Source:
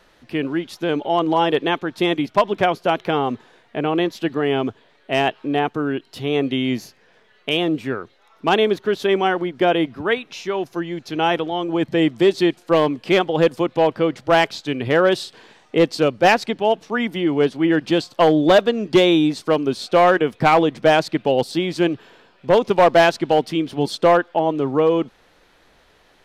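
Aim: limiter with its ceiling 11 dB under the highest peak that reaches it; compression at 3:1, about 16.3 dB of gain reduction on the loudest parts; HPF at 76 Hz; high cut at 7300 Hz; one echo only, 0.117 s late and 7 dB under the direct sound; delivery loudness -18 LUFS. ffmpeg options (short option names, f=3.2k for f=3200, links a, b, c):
-af "highpass=76,lowpass=7.3k,acompressor=threshold=-33dB:ratio=3,alimiter=level_in=1.5dB:limit=-24dB:level=0:latency=1,volume=-1.5dB,aecho=1:1:117:0.447,volume=17.5dB"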